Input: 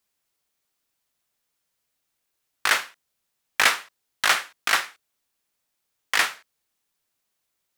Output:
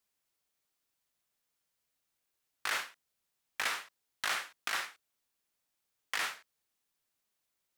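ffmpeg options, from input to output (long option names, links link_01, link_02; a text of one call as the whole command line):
ffmpeg -i in.wav -af "alimiter=limit=-15.5dB:level=0:latency=1:release=95,volume=-5.5dB" out.wav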